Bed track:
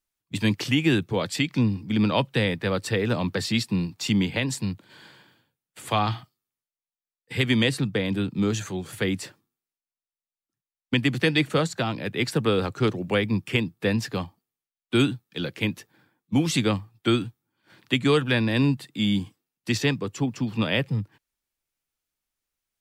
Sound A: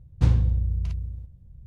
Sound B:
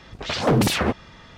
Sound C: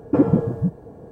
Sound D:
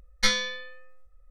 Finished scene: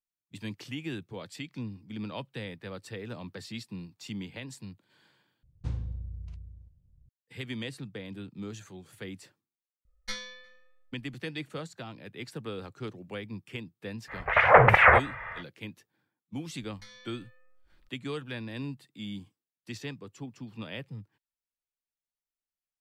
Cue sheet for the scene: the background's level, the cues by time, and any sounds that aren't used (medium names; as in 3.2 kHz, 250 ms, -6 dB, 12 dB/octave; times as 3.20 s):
bed track -15.5 dB
5.43 s: replace with A -14.5 dB + resampled via 22.05 kHz
9.85 s: add D -14 dB + echo from a far wall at 61 m, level -30 dB
14.07 s: add B -1 dB, fades 0.05 s + FFT filter 120 Hz 0 dB, 270 Hz -21 dB, 510 Hz +5 dB, 2.1 kHz +14 dB, 4.3 kHz -25 dB
16.59 s: add D -8 dB + compression 2.5:1, threshold -49 dBFS
not used: C